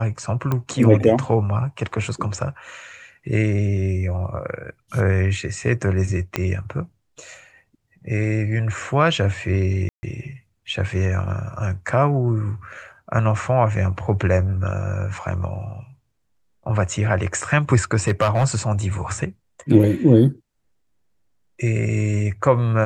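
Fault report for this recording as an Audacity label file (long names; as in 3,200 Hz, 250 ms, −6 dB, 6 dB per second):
0.520000	0.520000	click −11 dBFS
6.360000	6.360000	click −7 dBFS
9.890000	10.030000	drop-out 140 ms
18.070000	18.460000	clipping −12 dBFS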